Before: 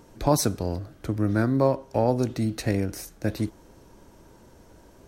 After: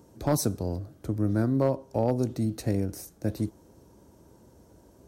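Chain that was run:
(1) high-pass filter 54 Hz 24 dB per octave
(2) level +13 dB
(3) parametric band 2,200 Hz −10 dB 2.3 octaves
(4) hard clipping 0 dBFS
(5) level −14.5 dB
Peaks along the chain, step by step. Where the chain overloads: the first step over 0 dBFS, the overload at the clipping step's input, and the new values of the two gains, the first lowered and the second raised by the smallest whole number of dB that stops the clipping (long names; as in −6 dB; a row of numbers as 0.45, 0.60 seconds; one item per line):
−6.5, +6.5, +4.5, 0.0, −14.5 dBFS
step 2, 4.5 dB
step 2 +8 dB, step 5 −9.5 dB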